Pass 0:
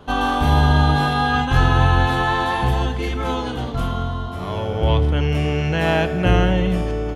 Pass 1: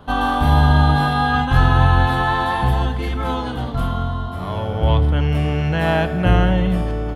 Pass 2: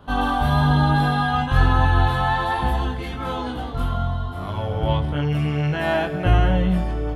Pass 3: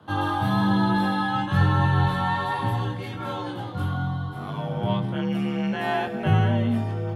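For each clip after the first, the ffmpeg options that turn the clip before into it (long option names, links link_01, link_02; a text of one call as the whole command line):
ffmpeg -i in.wav -af "equalizer=frequency=400:width_type=o:width=0.67:gain=-6,equalizer=frequency=2500:width_type=o:width=0.67:gain=-5,equalizer=frequency=6300:width_type=o:width=0.67:gain=-9,volume=2dB" out.wav
ffmpeg -i in.wav -af "flanger=delay=19.5:depth=2.2:speed=1.1" out.wav
ffmpeg -i in.wav -af "afreqshift=50,volume=-4dB" out.wav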